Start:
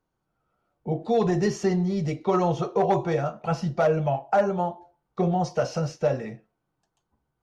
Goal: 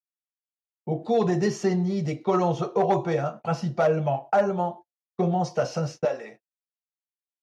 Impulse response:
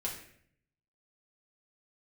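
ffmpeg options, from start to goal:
-af "agate=range=-46dB:threshold=-38dB:ratio=16:detection=peak,asetnsamples=nb_out_samples=441:pad=0,asendcmd='6.05 highpass f 480',highpass=100"

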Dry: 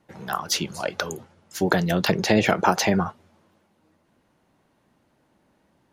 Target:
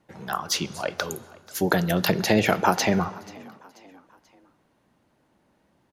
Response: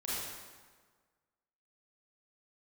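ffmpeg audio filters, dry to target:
-filter_complex "[0:a]asettb=1/sr,asplit=3[link_01][link_02][link_03];[link_01]atrim=end=1.074[link_04];[link_02]atrim=start=1.07:end=2.76,asetpts=PTS-STARTPTS,afade=type=in:duration=0.004:curve=qsin,afade=type=out:start_time=1.686:duration=0.004:curve=qsin,equalizer=frequency=12000:width_type=o:width=0.52:gain=12[link_05];[link_03]atrim=start=2.756[link_06];[link_04][link_05]acrossfade=duration=0.004:curve1=hsin:curve2=qsin[link_07];[link_07][link_06]acrossfade=duration=0.004:curve1=qsin:curve2=hsin,asplit=4[link_08][link_09][link_10][link_11];[link_09]adelay=485,afreqshift=43,volume=-22.5dB[link_12];[link_10]adelay=970,afreqshift=86,volume=-29.4dB[link_13];[link_11]adelay=1455,afreqshift=129,volume=-36.4dB[link_14];[link_08][link_12][link_13][link_14]amix=inputs=4:normalize=0,asplit=2[link_15][link_16];[1:a]atrim=start_sample=2205,lowpass=7200[link_17];[link_16][link_17]afir=irnorm=-1:irlink=0,volume=-20.5dB[link_18];[link_15][link_18]amix=inputs=2:normalize=0,volume=-1.5dB"

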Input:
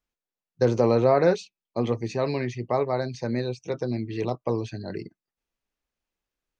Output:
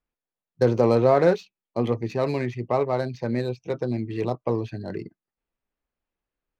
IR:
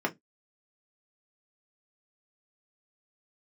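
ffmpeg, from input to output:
-af "adynamicsmooth=sensitivity=5.5:basefreq=2900,volume=1.5dB"

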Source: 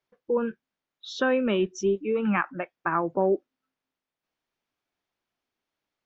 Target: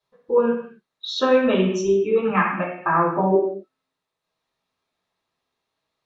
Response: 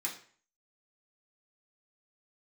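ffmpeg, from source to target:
-filter_complex "[1:a]atrim=start_sample=2205,atrim=end_sample=6615,asetrate=22932,aresample=44100[link_01];[0:a][link_01]afir=irnorm=-1:irlink=0"

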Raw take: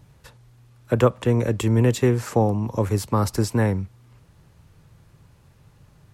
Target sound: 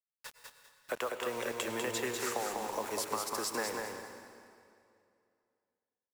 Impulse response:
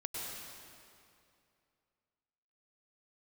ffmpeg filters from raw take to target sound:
-filter_complex "[0:a]highpass=710,acompressor=threshold=-34dB:ratio=10,acrusher=bits=7:mix=0:aa=0.000001,aecho=1:1:197|394|591|788:0.631|0.17|0.046|0.0124,asplit=2[link_01][link_02];[1:a]atrim=start_sample=2205[link_03];[link_02][link_03]afir=irnorm=-1:irlink=0,volume=-6dB[link_04];[link_01][link_04]amix=inputs=2:normalize=0,volume=-1.5dB"

